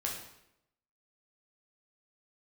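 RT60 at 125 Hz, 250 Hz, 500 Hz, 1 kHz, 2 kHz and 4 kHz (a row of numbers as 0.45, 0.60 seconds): 0.90, 0.85, 0.85, 0.80, 0.75, 0.70 seconds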